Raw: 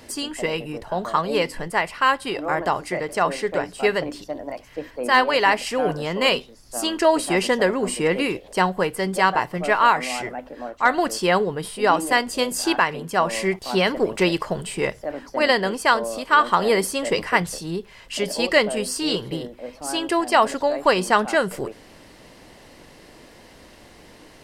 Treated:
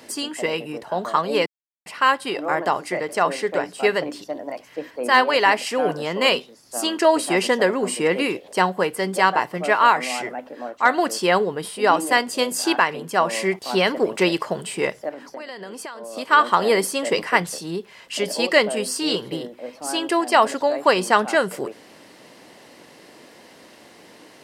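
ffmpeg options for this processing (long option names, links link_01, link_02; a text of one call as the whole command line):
ffmpeg -i in.wav -filter_complex "[0:a]asettb=1/sr,asplit=3[link_01][link_02][link_03];[link_01]atrim=end=15.094[link_04];[link_02]atrim=start=15.09:end=16.17,asetpts=PTS-STARTPTS,afade=type=in:duration=0.004:curve=qsin,afade=type=out:start_time=1.076:duration=0.004:curve=qsin,acompressor=threshold=-31dB:ratio=20:attack=3.2:release=140:knee=1:detection=peak[link_05];[link_03]atrim=start=16.166[link_06];[link_04][link_05]acrossfade=duration=0.004:curve1=hsin:curve2=qsin[link_07];[link_07][link_06]acrossfade=duration=0.004:curve1=qsin:curve2=hsin,asplit=3[link_08][link_09][link_10];[link_08]atrim=end=1.46,asetpts=PTS-STARTPTS,afade=type=out:start_time=1.456:duration=0.004:curve=hsin[link_11];[link_09]atrim=start=1.46:end=1.86,asetpts=PTS-STARTPTS,volume=0[link_12];[link_10]atrim=start=1.86,asetpts=PTS-STARTPTS,afade=type=in:duration=0.004:curve=hsin[link_13];[link_11][link_12][link_13]concat=n=3:v=0:a=1,highpass=190,volume=1dB" out.wav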